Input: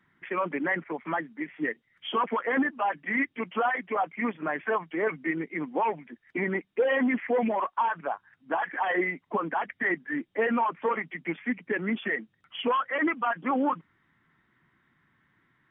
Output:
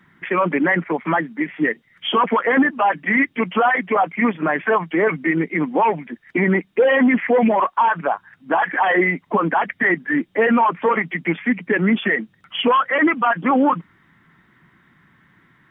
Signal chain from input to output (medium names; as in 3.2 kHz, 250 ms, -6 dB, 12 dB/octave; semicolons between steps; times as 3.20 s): peaking EQ 180 Hz +5 dB 0.4 oct; in parallel at +3 dB: peak limiter -23.5 dBFS, peak gain reduction 8 dB; on the sum: trim +4.5 dB